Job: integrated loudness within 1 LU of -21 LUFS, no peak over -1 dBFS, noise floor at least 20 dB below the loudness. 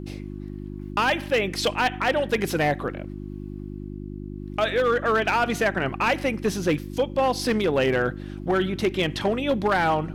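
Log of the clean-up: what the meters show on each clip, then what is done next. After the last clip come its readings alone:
clipped samples 1.7%; clipping level -15.5 dBFS; hum 50 Hz; highest harmonic 350 Hz; hum level -33 dBFS; loudness -24.0 LUFS; peak level -15.5 dBFS; loudness target -21.0 LUFS
-> clip repair -15.5 dBFS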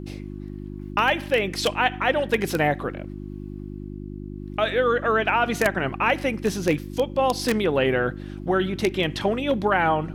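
clipped samples 0.0%; hum 50 Hz; highest harmonic 350 Hz; hum level -32 dBFS
-> de-hum 50 Hz, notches 7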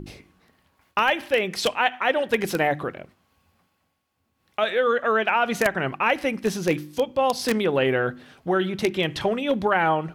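hum not found; loudness -23.5 LUFS; peak level -6.0 dBFS; loudness target -21.0 LUFS
-> trim +2.5 dB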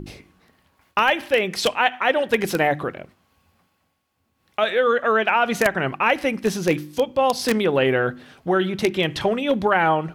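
loudness -21.0 LUFS; peak level -3.5 dBFS; noise floor -70 dBFS

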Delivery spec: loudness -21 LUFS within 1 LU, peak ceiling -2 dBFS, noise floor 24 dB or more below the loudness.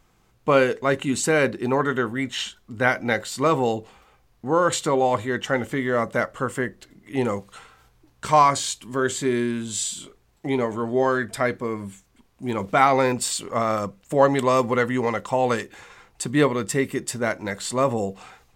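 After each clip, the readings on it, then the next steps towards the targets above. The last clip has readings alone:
loudness -23.0 LUFS; peak level -3.0 dBFS; loudness target -21.0 LUFS
-> trim +2 dB; peak limiter -2 dBFS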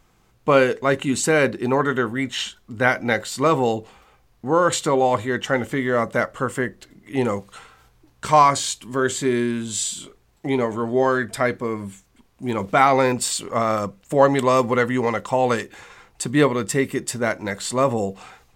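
loudness -21.0 LUFS; peak level -2.0 dBFS; noise floor -59 dBFS

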